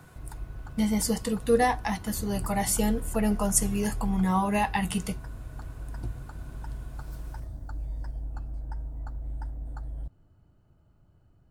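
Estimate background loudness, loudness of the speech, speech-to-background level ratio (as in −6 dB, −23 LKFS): −40.0 LKFS, −27.0 LKFS, 13.0 dB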